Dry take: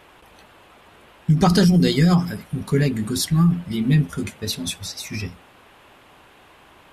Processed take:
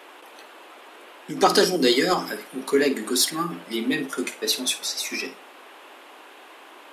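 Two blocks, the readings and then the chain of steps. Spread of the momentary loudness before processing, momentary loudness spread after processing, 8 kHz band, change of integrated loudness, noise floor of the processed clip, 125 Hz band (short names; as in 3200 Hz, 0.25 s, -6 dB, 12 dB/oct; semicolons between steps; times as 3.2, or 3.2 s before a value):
15 LU, 12 LU, +4.0 dB, -3.0 dB, -47 dBFS, -22.5 dB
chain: steep high-pass 280 Hz 36 dB/oct; in parallel at -4 dB: soft clip -18 dBFS, distortion -12 dB; on the sum: flutter echo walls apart 9 m, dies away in 0.24 s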